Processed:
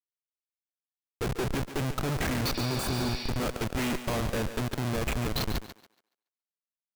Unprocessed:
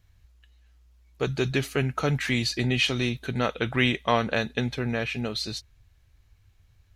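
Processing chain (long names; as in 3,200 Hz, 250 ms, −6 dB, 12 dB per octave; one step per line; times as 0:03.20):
comparator with hysteresis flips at −27 dBFS
healed spectral selection 0:02.57–0:03.27, 1,700–5,800 Hz before
feedback echo with a high-pass in the loop 141 ms, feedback 27%, high-pass 270 Hz, level −10 dB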